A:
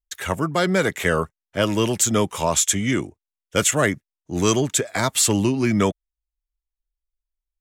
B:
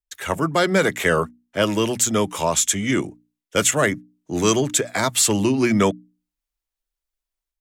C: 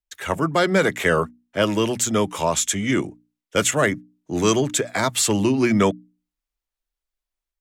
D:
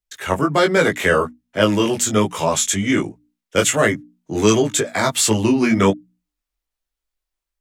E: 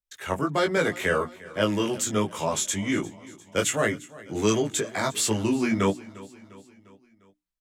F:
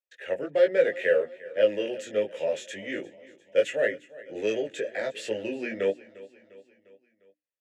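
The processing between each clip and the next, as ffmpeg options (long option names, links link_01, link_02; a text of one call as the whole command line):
ffmpeg -i in.wav -filter_complex "[0:a]bandreject=frequency=60:width_type=h:width=6,bandreject=frequency=120:width_type=h:width=6,bandreject=frequency=180:width_type=h:width=6,bandreject=frequency=240:width_type=h:width=6,bandreject=frequency=300:width_type=h:width=6,acrossover=split=130[link_01][link_02];[link_02]dynaudnorm=framelen=170:gausssize=3:maxgain=11.5dB[link_03];[link_01][link_03]amix=inputs=2:normalize=0,volume=-4.5dB" out.wav
ffmpeg -i in.wav -af "highshelf=frequency=5800:gain=-5" out.wav
ffmpeg -i in.wav -af "flanger=delay=18:depth=3.6:speed=1.3,volume=6dB" out.wav
ffmpeg -i in.wav -af "aecho=1:1:351|702|1053|1404:0.1|0.054|0.0292|0.0157,volume=-8dB" out.wav
ffmpeg -i in.wav -filter_complex "[0:a]asplit=2[link_01][link_02];[link_02]asoftclip=type=hard:threshold=-18.5dB,volume=-4.5dB[link_03];[link_01][link_03]amix=inputs=2:normalize=0,asplit=3[link_04][link_05][link_06];[link_04]bandpass=frequency=530:width_type=q:width=8,volume=0dB[link_07];[link_05]bandpass=frequency=1840:width_type=q:width=8,volume=-6dB[link_08];[link_06]bandpass=frequency=2480:width_type=q:width=8,volume=-9dB[link_09];[link_07][link_08][link_09]amix=inputs=3:normalize=0,volume=4.5dB" out.wav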